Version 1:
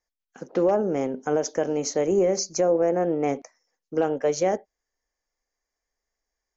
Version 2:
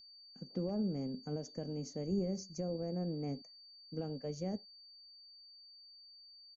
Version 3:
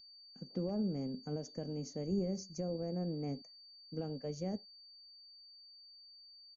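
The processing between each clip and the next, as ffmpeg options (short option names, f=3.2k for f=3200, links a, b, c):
-af "aeval=exprs='val(0)+0.0224*sin(2*PI*4600*n/s)':c=same,firequalizer=gain_entry='entry(210,0);entry(330,-14);entry(930,-22);entry(1500,-23);entry(2800,-20);entry(5700,-18)':delay=0.05:min_phase=1,volume=-3.5dB"
-af "aresample=16000,aresample=44100"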